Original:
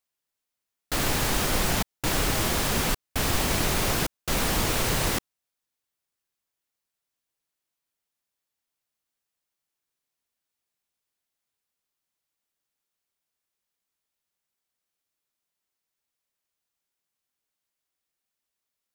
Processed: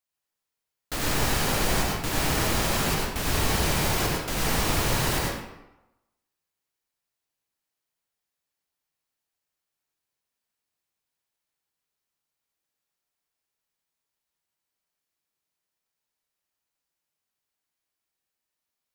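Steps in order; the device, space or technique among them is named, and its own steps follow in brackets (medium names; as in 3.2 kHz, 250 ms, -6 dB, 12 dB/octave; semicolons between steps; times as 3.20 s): bathroom (reverberation RT60 0.95 s, pre-delay 82 ms, DRR -3 dB); trim -4 dB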